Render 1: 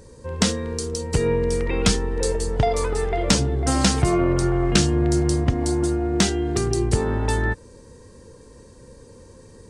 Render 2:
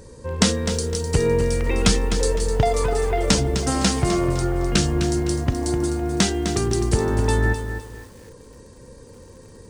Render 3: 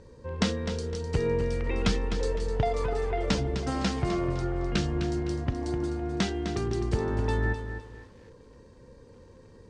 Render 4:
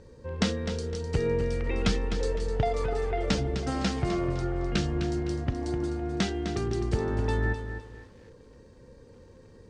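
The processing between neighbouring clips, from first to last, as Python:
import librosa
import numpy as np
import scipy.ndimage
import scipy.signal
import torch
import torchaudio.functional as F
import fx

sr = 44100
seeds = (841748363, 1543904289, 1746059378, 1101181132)

y1 = fx.rider(x, sr, range_db=3, speed_s=2.0)
y1 = fx.echo_crushed(y1, sr, ms=255, feedback_pct=35, bits=7, wet_db=-9.0)
y2 = scipy.signal.sosfilt(scipy.signal.butter(2, 4100.0, 'lowpass', fs=sr, output='sos'), y1)
y2 = F.gain(torch.from_numpy(y2), -7.5).numpy()
y3 = fx.notch(y2, sr, hz=1000.0, q=9.8)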